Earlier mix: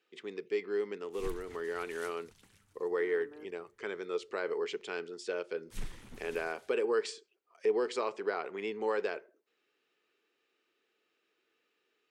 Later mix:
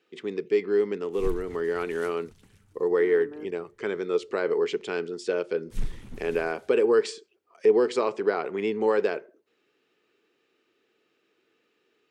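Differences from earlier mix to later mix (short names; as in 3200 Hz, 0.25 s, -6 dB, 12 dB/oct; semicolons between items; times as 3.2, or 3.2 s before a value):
speech +5.0 dB; master: add low shelf 370 Hz +11 dB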